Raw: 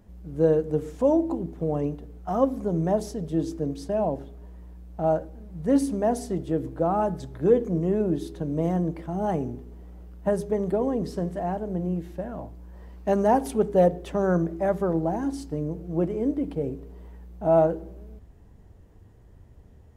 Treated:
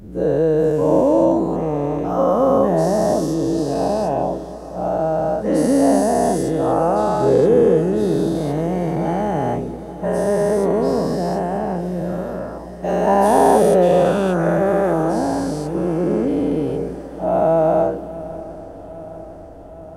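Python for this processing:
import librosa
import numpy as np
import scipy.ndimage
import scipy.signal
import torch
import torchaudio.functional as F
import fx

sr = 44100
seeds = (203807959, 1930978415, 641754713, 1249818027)

y = fx.spec_dilate(x, sr, span_ms=480)
y = fx.echo_swing(y, sr, ms=812, ratio=3, feedback_pct=65, wet_db=-18.5)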